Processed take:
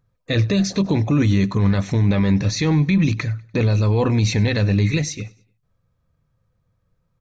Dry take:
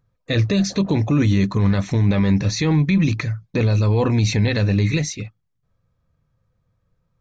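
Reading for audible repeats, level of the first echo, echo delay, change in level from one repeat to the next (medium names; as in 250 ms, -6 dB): 2, -23.0 dB, 98 ms, -7.5 dB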